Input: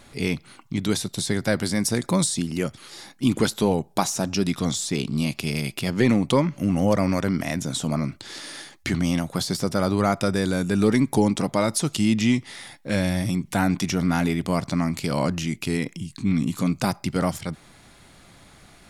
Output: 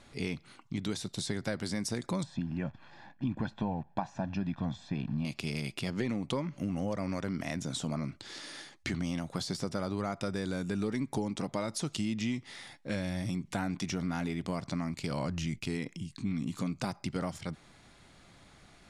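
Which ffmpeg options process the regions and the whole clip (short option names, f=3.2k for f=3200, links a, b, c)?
-filter_complex "[0:a]asettb=1/sr,asplit=3[a][b][c];[a]atrim=end=2.234[d];[b]atrim=start=2.23:end=5.25,asetpts=PTS-STARTPTS,afade=t=in:d=0.004:c=qsin,afade=t=out:st=3.016:d=0.004:c=qsin,acrusher=bits=8:dc=4:mix=0:aa=0.000001,lowpass=1.8k,aecho=1:1:1.2:0.71,atrim=end_sample=133182[e];[c]atrim=start=5.246[f];[d][e]acrossfade=d=0.004:c1=hsin:c2=qsin[g];[g][f]acrossfade=d=0.004:c1=qsin:c2=hsin,asettb=1/sr,asplit=3[h][i][j];[h]atrim=end=14.944[k];[i]atrim=start=14.94:end=15.66,asetpts=PTS-STARTPTS,afade=t=in:d=0.004:c=qsin,afade=t=out:st=0.716:d=0.004:c=qsin,asubboost=boost=11.5:cutoff=160,agate=range=-11dB:threshold=-39dB:ratio=16:release=100:detection=peak[l];[j]atrim=start=15.656[m];[k][l]acrossfade=d=0.004:c1=hsin:c2=qsin[n];[n][m]acrossfade=d=0.004:c1=qsin:c2=hsin,lowpass=8.1k,acompressor=threshold=-23dB:ratio=4,volume=-7dB"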